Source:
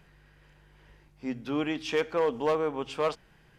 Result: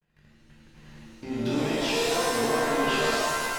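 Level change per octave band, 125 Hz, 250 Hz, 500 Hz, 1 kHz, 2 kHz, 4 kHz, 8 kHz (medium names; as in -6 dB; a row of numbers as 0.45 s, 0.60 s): +7.0 dB, +4.0 dB, +1.5 dB, +6.5 dB, +10.0 dB, +11.0 dB, +19.0 dB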